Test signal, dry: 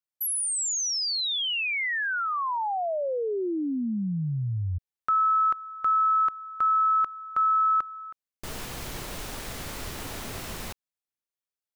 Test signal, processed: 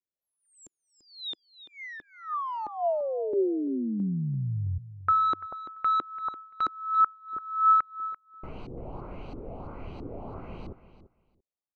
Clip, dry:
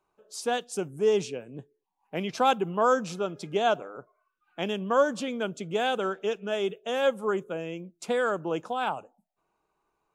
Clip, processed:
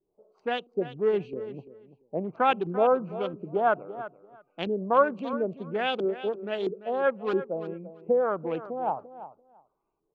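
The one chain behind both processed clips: Wiener smoothing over 25 samples; LFO low-pass saw up 1.5 Hz 320–4400 Hz; on a send: feedback echo 0.34 s, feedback 16%, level -14 dB; on the sum: gain -1.5 dB

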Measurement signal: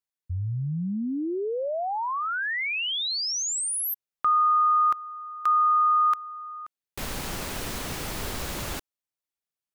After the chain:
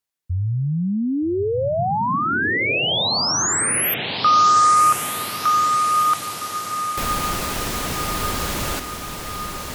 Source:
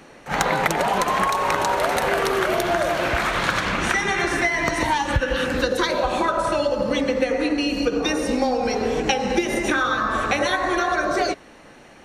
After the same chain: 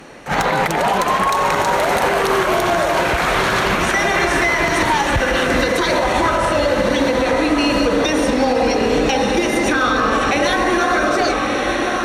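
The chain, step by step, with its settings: diffused feedback echo 1.249 s, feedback 60%, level -6.5 dB; one-sided clip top -13.5 dBFS; limiter -15 dBFS; gain +7 dB

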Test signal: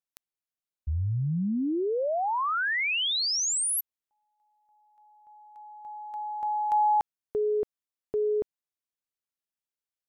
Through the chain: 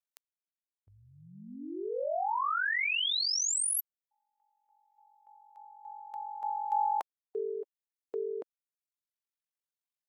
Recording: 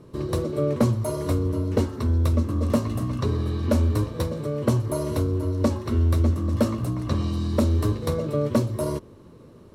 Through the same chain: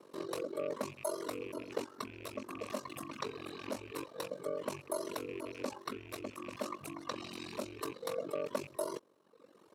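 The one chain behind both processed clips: rattling part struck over -23 dBFS, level -31 dBFS; reverb removal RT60 1.1 s; limiter -21 dBFS; ring modulator 23 Hz; HPF 460 Hz 12 dB/oct

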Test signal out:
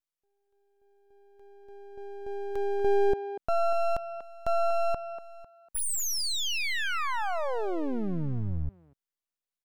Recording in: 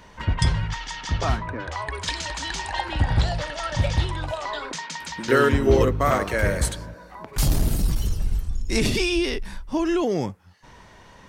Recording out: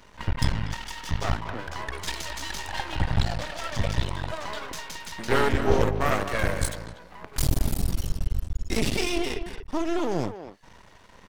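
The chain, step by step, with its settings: half-wave rectifier; speakerphone echo 0.24 s, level -10 dB

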